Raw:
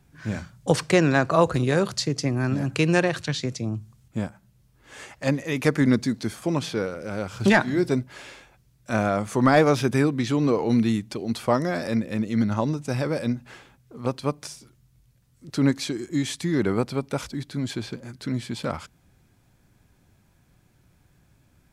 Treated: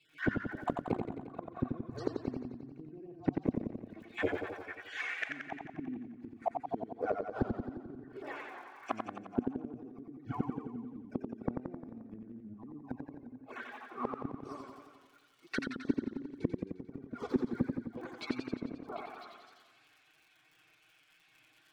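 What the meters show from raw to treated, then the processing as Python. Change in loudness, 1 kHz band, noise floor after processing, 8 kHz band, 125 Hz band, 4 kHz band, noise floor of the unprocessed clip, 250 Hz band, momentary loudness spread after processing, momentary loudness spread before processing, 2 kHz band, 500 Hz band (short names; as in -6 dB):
-15.0 dB, -12.5 dB, -67 dBFS, under -25 dB, -18.0 dB, -19.5 dB, -62 dBFS, -13.5 dB, 13 LU, 13 LU, -13.5 dB, -15.5 dB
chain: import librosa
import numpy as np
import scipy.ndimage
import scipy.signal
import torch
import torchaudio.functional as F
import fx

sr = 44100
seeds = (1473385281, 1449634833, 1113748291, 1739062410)

p1 = fx.spec_dropout(x, sr, seeds[0], share_pct=31)
p2 = scipy.signal.sosfilt(scipy.signal.butter(4, 83.0, 'highpass', fs=sr, output='sos'), p1)
p3 = fx.high_shelf(p2, sr, hz=2600.0, db=-9.5)
p4 = p3 + 0.69 * np.pad(p3, (int(2.7 * sr / 1000.0), 0))[:len(p3)]
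p5 = fx.auto_wah(p4, sr, base_hz=230.0, top_hz=3100.0, q=2.3, full_db=-28.0, direction='down')
p6 = fx.over_compress(p5, sr, threshold_db=-32.0, ratio=-0.5)
p7 = p5 + F.gain(torch.from_numpy(p6), 2.5).numpy()
p8 = fx.dmg_crackle(p7, sr, seeds[1], per_s=50.0, level_db=-54.0)
p9 = p8 + fx.echo_stepped(p8, sr, ms=250, hz=1000.0, octaves=0.7, feedback_pct=70, wet_db=-3.0, dry=0)
p10 = fx.env_flanger(p9, sr, rest_ms=6.5, full_db=-20.5)
p11 = fx.gate_flip(p10, sr, shuts_db=-24.0, range_db=-30)
p12 = fx.dynamic_eq(p11, sr, hz=250.0, q=3.9, threshold_db=-54.0, ratio=4.0, max_db=5)
p13 = fx.echo_warbled(p12, sr, ms=88, feedback_pct=64, rate_hz=2.8, cents=97, wet_db=-5.0)
y = F.gain(torch.from_numpy(p13), 5.0).numpy()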